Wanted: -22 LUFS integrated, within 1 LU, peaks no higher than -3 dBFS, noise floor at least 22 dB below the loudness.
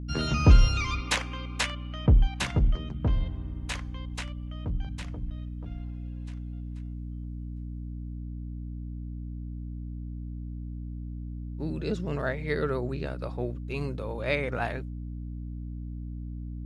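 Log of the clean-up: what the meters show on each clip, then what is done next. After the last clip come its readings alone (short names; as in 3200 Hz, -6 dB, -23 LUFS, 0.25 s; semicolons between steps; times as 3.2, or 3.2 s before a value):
hum 60 Hz; harmonics up to 300 Hz; hum level -34 dBFS; loudness -31.5 LUFS; peak -6.5 dBFS; loudness target -22.0 LUFS
-> notches 60/120/180/240/300 Hz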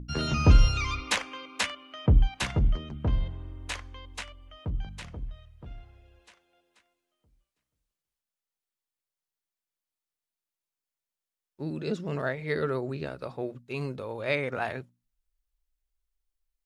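hum none; loudness -29.5 LUFS; peak -7.0 dBFS; loudness target -22.0 LUFS
-> gain +7.5 dB; limiter -3 dBFS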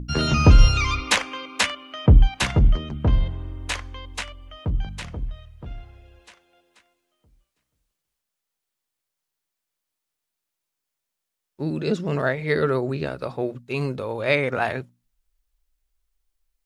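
loudness -22.5 LUFS; peak -3.0 dBFS; noise floor -83 dBFS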